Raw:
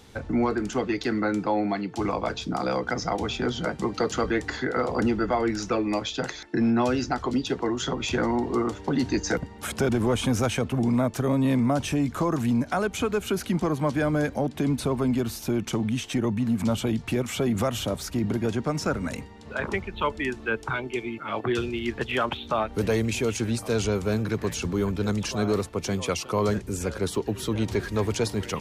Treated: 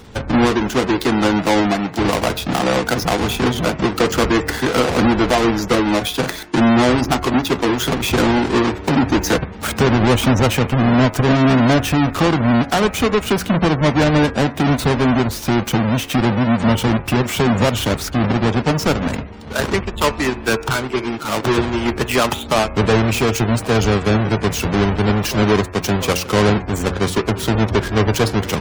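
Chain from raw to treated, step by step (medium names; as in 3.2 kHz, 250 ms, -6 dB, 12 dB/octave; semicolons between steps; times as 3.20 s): square wave that keeps the level; de-hum 91.02 Hz, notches 29; spectral gate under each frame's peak -30 dB strong; trim +6 dB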